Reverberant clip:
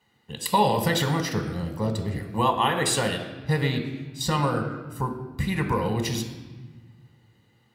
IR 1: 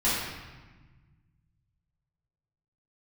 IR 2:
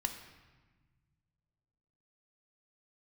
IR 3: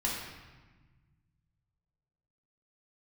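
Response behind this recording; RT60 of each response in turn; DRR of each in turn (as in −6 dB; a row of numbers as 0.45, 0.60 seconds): 2; 1.3, 1.3, 1.3 seconds; −10.5, 5.5, −4.5 decibels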